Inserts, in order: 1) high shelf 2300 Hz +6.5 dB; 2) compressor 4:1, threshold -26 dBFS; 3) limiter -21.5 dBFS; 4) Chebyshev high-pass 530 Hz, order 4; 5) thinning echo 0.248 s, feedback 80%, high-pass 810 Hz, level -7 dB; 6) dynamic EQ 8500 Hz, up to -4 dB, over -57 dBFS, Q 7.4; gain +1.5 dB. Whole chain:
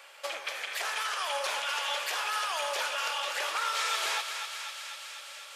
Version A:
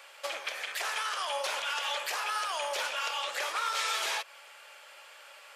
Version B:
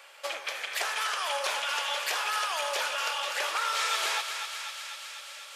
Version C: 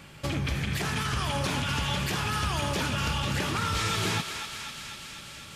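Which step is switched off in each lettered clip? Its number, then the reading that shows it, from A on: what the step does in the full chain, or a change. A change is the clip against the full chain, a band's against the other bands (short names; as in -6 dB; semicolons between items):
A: 5, momentary loudness spread change +11 LU; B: 3, loudness change +1.5 LU; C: 4, 500 Hz band +2.0 dB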